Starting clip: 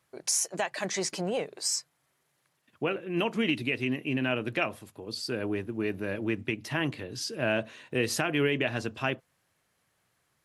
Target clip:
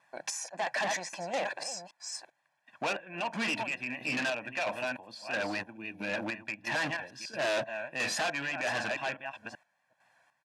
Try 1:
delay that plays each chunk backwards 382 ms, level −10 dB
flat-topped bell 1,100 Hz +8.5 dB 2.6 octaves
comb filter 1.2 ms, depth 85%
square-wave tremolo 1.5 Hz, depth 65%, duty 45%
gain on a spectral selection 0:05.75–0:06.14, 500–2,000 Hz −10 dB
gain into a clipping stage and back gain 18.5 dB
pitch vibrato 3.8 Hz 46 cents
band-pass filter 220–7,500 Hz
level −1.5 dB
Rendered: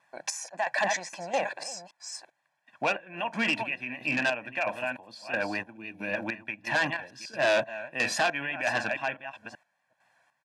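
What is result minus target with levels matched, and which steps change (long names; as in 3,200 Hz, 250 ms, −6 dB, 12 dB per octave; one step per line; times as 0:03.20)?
gain into a clipping stage and back: distortion −5 dB
change: gain into a clipping stage and back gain 26.5 dB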